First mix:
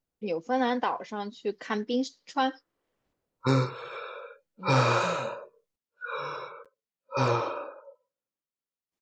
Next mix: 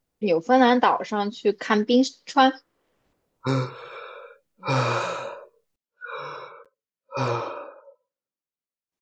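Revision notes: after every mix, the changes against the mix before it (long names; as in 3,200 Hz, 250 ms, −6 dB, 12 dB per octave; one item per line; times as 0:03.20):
first voice +9.5 dB
second voice −8.0 dB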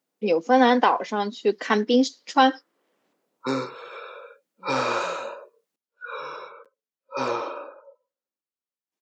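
master: add high-pass filter 200 Hz 24 dB per octave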